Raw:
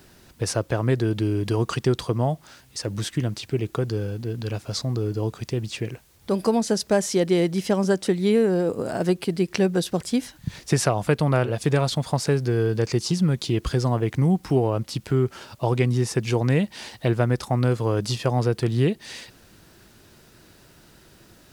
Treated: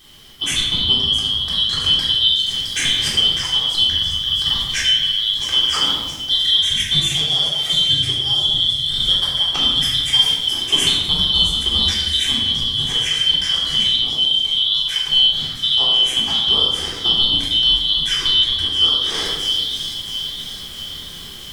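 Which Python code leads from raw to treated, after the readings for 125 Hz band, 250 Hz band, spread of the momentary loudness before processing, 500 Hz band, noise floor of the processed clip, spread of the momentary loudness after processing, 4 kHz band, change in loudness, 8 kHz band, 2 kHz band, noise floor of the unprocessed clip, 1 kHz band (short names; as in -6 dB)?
-9.5 dB, -11.0 dB, 8 LU, -14.5 dB, -32 dBFS, 6 LU, +25.0 dB, +9.0 dB, +6.5 dB, +5.5 dB, -54 dBFS, -2.5 dB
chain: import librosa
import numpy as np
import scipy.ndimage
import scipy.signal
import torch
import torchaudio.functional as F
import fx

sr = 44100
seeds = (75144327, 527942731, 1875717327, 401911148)

y = fx.band_shuffle(x, sr, order='2413')
y = fx.bass_treble(y, sr, bass_db=5, treble_db=1)
y = fx.echo_wet_highpass(y, sr, ms=665, feedback_pct=51, hz=4500.0, wet_db=-7.5)
y = fx.rider(y, sr, range_db=10, speed_s=0.5)
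y = fx.room_shoebox(y, sr, seeds[0], volume_m3=750.0, walls='mixed', distance_m=3.7)
y = y * 10.0 ** (-2.0 / 20.0)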